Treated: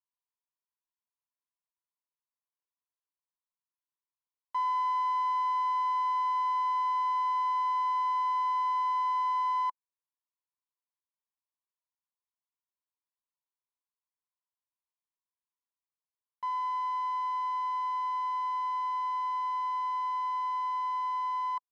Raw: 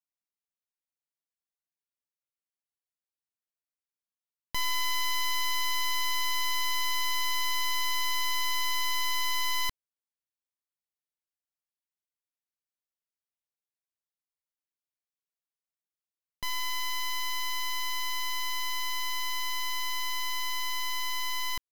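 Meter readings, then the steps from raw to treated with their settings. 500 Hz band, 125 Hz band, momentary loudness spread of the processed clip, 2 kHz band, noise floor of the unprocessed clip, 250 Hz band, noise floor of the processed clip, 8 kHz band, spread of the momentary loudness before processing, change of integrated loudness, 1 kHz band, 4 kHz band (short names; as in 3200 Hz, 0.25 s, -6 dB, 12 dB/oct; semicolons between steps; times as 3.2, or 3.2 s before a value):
under -10 dB, n/a, 3 LU, -15.0 dB, under -85 dBFS, under -15 dB, under -85 dBFS, under -25 dB, 3 LU, -0.5 dB, +8.0 dB, -21.0 dB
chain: band-pass 1000 Hz, Q 9; gain +8 dB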